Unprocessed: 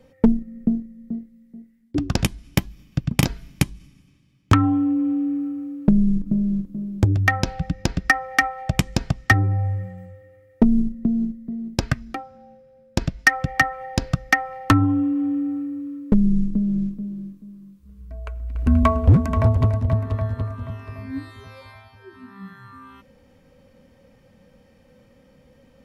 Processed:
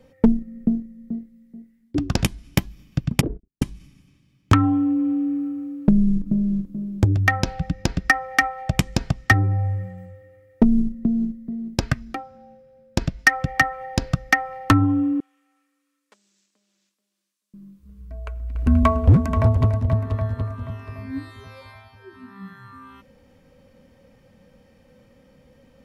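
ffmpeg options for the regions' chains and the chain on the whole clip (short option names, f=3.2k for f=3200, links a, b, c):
-filter_complex "[0:a]asettb=1/sr,asplit=3[a][b][c];[a]atrim=end=3.214[d];[b]atrim=start=3.21:end=3.62,asetpts=PTS-STARTPTS,afade=t=in:d=0.004:c=qsin,afade=t=out:st=0.406:d=0.004:c=qsin,agate=range=-49dB:threshold=-36dB:ratio=16:release=100:detection=peak,aeval=exprs='(mod(7.5*val(0)+1,2)-1)/7.5':c=same,lowpass=f=400:t=q:w=3.3[e];[c]atrim=start=3.616[f];[d][e]acrossfade=d=0.004:c1=hsin:c2=qsin[g];[g][f]acrossfade=d=0.004:c1=qsin:c2=hsin,asettb=1/sr,asplit=3[h][i][j];[h]atrim=end=15.204[k];[i]atrim=start=15.2:end=17.54,asetpts=PTS-STARTPTS,afade=t=in:d=0.004:c=qsin,afade=t=out:st=2.336:d=0.004:c=qsin,highpass=780,lowpass=7.9k,aderivative[l];[j]atrim=start=17.536[m];[k][l]acrossfade=d=0.004:c1=hsin:c2=qsin[n];[n][m]acrossfade=d=0.004:c1=qsin:c2=hsin"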